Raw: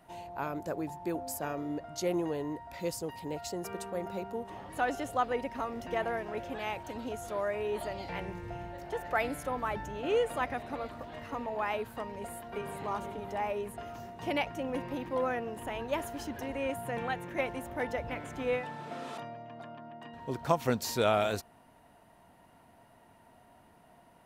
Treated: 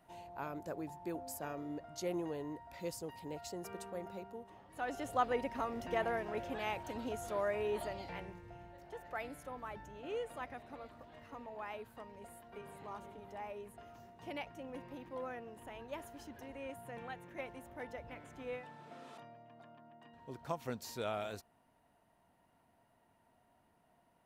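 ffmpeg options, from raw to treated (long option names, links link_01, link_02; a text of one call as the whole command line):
ffmpeg -i in.wav -af "volume=5.5dB,afade=type=out:start_time=3.89:duration=0.79:silence=0.398107,afade=type=in:start_time=4.68:duration=0.54:silence=0.237137,afade=type=out:start_time=7.68:duration=0.75:silence=0.334965" out.wav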